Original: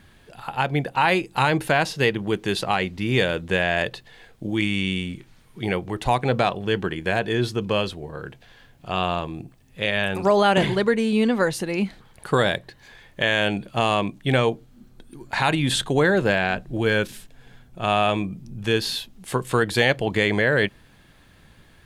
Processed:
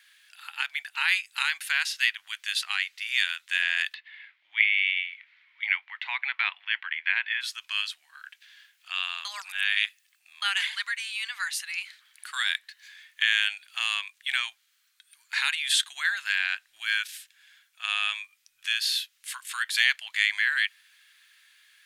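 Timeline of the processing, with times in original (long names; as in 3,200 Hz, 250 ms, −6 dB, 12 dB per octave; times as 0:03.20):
0:03.94–0:07.41: loudspeaker in its box 310–3,300 Hz, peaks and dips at 420 Hz −4 dB, 920 Hz +8 dB, 2,100 Hz +9 dB
0:09.25–0:10.42: reverse
whole clip: inverse Chebyshev high-pass filter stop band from 490 Hz, stop band 60 dB; level +1 dB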